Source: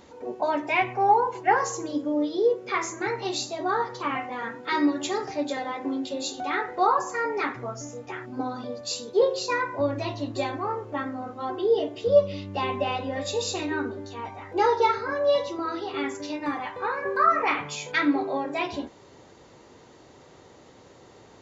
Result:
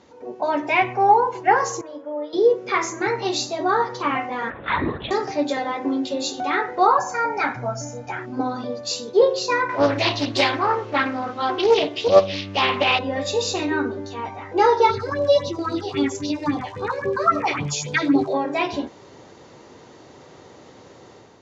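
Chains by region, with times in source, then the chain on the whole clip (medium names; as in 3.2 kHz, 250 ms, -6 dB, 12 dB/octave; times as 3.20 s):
1.81–2.33 s: three-band isolator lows -23 dB, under 500 Hz, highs -18 dB, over 2.3 kHz + comb of notches 390 Hz
4.50–5.11 s: bass shelf 460 Hz -10.5 dB + upward compressor, threshold -36 dBFS + LPC vocoder at 8 kHz whisper
6.98–8.19 s: peaking EQ 3.2 kHz -5.5 dB 0.54 oct + comb 1.3 ms, depth 64%
9.69–12.99 s: peaking EQ 3.4 kHz +12.5 dB 2.4 oct + loudspeaker Doppler distortion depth 0.36 ms
14.89–18.33 s: tone controls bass +12 dB, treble +7 dB + phase shifter stages 4, 3.7 Hz, lowest notch 190–2000 Hz + crackle 140 per s -39 dBFS
whole clip: Chebyshev low-pass 6.4 kHz, order 3; level rider gain up to 7 dB; high-pass 77 Hz; trim -1 dB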